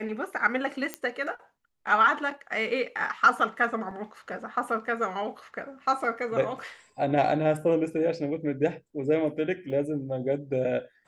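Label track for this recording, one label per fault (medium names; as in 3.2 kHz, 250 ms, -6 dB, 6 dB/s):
0.940000	0.940000	pop -15 dBFS
3.910000	3.910000	dropout 2.8 ms
9.700000	9.700000	dropout 2.1 ms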